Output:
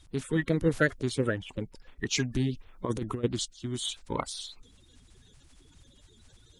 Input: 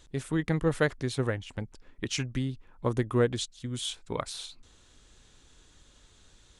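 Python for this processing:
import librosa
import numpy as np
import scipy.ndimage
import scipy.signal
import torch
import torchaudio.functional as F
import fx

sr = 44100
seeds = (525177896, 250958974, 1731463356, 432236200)

y = fx.spec_quant(x, sr, step_db=30)
y = fx.over_compress(y, sr, threshold_db=-29.0, ratio=-0.5, at=(2.11, 3.23), fade=0.02)
y = y * 10.0 ** (1.5 / 20.0)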